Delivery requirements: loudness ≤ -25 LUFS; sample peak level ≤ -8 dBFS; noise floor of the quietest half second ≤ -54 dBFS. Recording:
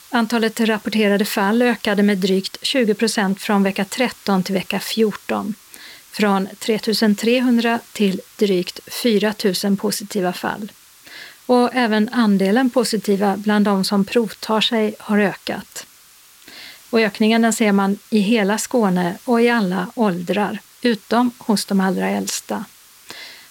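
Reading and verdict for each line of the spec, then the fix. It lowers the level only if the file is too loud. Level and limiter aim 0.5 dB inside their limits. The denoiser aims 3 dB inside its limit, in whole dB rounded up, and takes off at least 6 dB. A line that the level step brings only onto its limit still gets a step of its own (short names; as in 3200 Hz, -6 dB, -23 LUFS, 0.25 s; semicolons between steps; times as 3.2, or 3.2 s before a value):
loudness -18.5 LUFS: fail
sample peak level -5.5 dBFS: fail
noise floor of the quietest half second -48 dBFS: fail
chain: gain -7 dB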